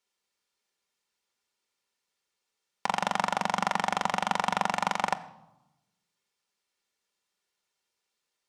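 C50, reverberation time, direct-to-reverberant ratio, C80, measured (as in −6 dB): 16.5 dB, 0.95 s, 8.5 dB, 18.0 dB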